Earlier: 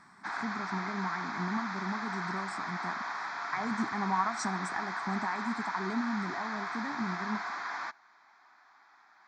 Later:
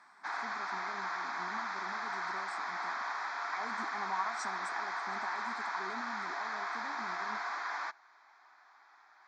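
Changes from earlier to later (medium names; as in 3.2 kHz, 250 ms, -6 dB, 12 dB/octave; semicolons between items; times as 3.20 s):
speech -5.5 dB; master: add Chebyshev high-pass 440 Hz, order 2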